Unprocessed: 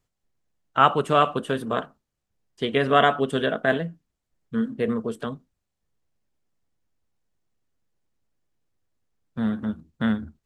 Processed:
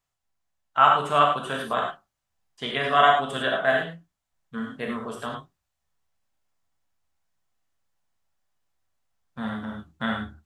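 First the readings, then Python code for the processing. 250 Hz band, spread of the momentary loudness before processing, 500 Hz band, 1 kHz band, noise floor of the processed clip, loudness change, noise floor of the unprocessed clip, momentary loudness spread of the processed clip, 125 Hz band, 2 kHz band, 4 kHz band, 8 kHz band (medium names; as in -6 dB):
-7.0 dB, 13 LU, -3.0 dB, +2.0 dB, -83 dBFS, +0.5 dB, -81 dBFS, 17 LU, -6.0 dB, +2.0 dB, +1.5 dB, no reading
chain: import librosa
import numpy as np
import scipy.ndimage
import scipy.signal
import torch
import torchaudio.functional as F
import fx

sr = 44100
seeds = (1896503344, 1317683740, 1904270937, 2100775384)

p1 = fx.low_shelf_res(x, sr, hz=570.0, db=-8.0, q=1.5)
p2 = fx.rider(p1, sr, range_db=3, speed_s=0.5)
p3 = p1 + (p2 * librosa.db_to_amplitude(0.0))
p4 = fx.rev_gated(p3, sr, seeds[0], gate_ms=130, shape='flat', drr_db=-0.5)
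y = p4 * librosa.db_to_amplitude(-8.0)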